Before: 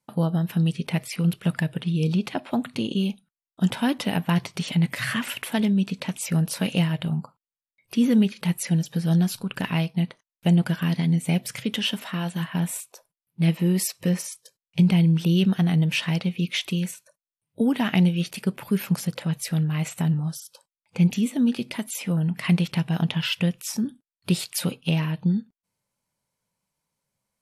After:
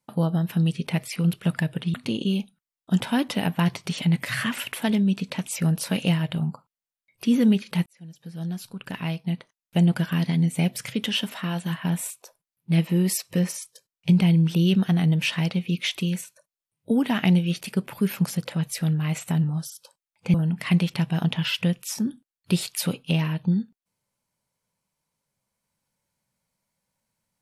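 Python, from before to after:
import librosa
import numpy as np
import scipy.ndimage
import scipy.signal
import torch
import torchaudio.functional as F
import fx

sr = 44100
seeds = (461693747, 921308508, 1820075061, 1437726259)

y = fx.edit(x, sr, fx.cut(start_s=1.94, length_s=0.7),
    fx.fade_in_span(start_s=8.56, length_s=2.06),
    fx.cut(start_s=21.04, length_s=1.08), tone=tone)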